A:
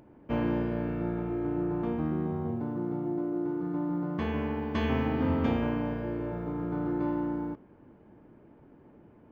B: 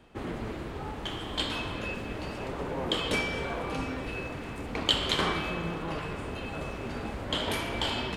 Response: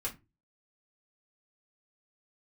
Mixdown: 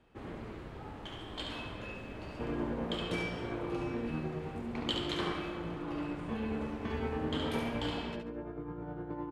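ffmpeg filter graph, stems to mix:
-filter_complex "[0:a]flanger=delay=19:depth=6.4:speed=0.29,tremolo=f=9.7:d=0.44,adelay=2100,volume=0.631,asplit=2[s0][s1];[s1]volume=0.299[s2];[1:a]volume=0.355,asplit=2[s3][s4];[s4]volume=0.531[s5];[2:a]atrim=start_sample=2205[s6];[s2][s6]afir=irnorm=-1:irlink=0[s7];[s5]aecho=0:1:70|140|210|280:1|0.29|0.0841|0.0244[s8];[s0][s3][s7][s8]amix=inputs=4:normalize=0,highshelf=f=4700:g=-6.5"

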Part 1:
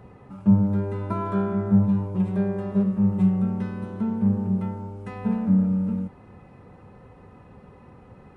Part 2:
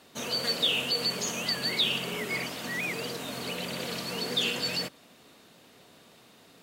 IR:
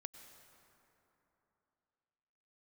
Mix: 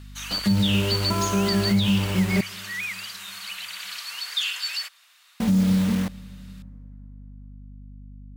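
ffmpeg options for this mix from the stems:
-filter_complex "[0:a]acrusher=bits=5:mix=0:aa=0.000001,aeval=exprs='val(0)+0.00631*(sin(2*PI*50*n/s)+sin(2*PI*2*50*n/s)/2+sin(2*PI*3*50*n/s)/3+sin(2*PI*4*50*n/s)/4+sin(2*PI*5*50*n/s)/5)':c=same,volume=1.26,asplit=3[s0][s1][s2];[s0]atrim=end=2.41,asetpts=PTS-STARTPTS,afade=t=out:st=2.406:d=0.004:c=hsin[s3];[s1]atrim=start=2.41:end=5.4,asetpts=PTS-STARTPTS,volume=0[s4];[s2]atrim=start=5.4,asetpts=PTS-STARTPTS,afade=t=in:d=0.004:c=hsin[s5];[s3][s4][s5]concat=n=3:v=0:a=1,asplit=2[s6][s7];[s7]volume=0.335[s8];[1:a]highpass=f=1200:w=0.5412,highpass=f=1200:w=1.3066,volume=1.33[s9];[2:a]atrim=start_sample=2205[s10];[s8][s10]afir=irnorm=-1:irlink=0[s11];[s6][s9][s11]amix=inputs=3:normalize=0,alimiter=limit=0.237:level=0:latency=1:release=101"

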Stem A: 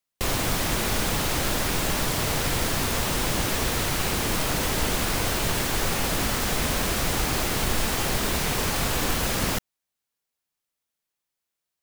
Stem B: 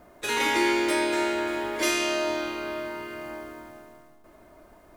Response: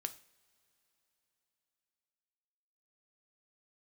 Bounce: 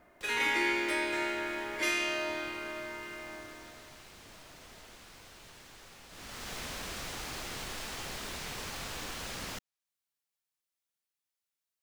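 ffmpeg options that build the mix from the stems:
-filter_complex "[0:a]tiltshelf=f=970:g=-3,acrossover=split=260|7900[s0][s1][s2];[s0]acompressor=threshold=0.0141:ratio=4[s3];[s1]acompressor=threshold=0.0282:ratio=4[s4];[s2]acompressor=threshold=0.00501:ratio=4[s5];[s3][s4][s5]amix=inputs=3:normalize=0,volume=0.376,afade=t=in:st=6.09:d=0.47:silence=0.223872[s6];[1:a]equalizer=f=2100:w=1.1:g=8.5,volume=0.316[s7];[s6][s7]amix=inputs=2:normalize=0"

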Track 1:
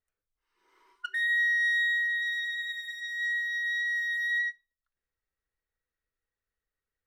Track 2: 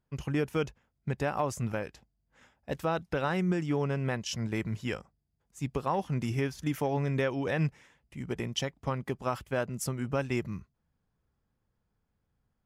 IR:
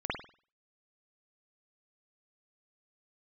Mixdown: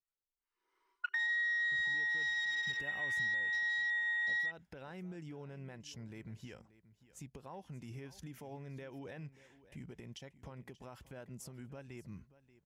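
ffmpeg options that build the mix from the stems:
-filter_complex "[0:a]afwtdn=0.00891,volume=1.33[s0];[1:a]equalizer=f=1200:w=6.2:g=-7,acompressor=threshold=0.0178:ratio=6,alimiter=level_in=3.35:limit=0.0631:level=0:latency=1:release=181,volume=0.299,adelay=1600,volume=0.596,asplit=2[s1][s2];[s2]volume=0.133,aecho=0:1:583:1[s3];[s0][s1][s3]amix=inputs=3:normalize=0,acompressor=threshold=0.02:ratio=5"

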